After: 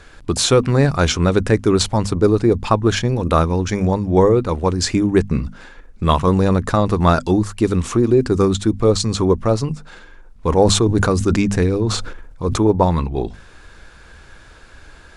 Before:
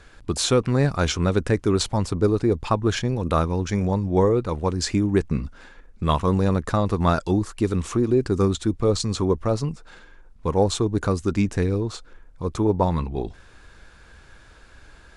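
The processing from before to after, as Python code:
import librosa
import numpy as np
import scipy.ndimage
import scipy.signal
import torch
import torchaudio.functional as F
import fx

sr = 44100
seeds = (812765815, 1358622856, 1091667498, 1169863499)

y = fx.hum_notches(x, sr, base_hz=50, count=5)
y = fx.sustainer(y, sr, db_per_s=45.0, at=(10.49, 12.63))
y = F.gain(torch.from_numpy(y), 6.0).numpy()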